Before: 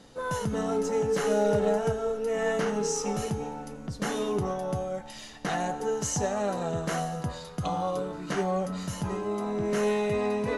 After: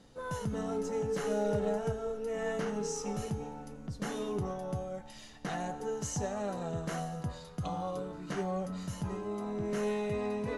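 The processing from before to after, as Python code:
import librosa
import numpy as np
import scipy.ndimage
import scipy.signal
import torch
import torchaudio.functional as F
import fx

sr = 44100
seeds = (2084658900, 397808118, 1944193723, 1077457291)

y = fx.low_shelf(x, sr, hz=200.0, db=6.0)
y = y * 10.0 ** (-8.0 / 20.0)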